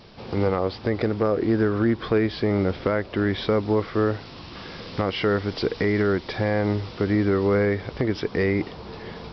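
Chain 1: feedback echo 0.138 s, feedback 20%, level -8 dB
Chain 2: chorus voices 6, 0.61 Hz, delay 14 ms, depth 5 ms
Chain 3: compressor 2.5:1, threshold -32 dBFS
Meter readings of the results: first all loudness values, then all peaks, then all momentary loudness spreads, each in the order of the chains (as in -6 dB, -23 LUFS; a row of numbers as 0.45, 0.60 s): -23.5, -26.0, -33.0 LUFS; -9.0, -9.5, -17.5 dBFS; 10, 12, 6 LU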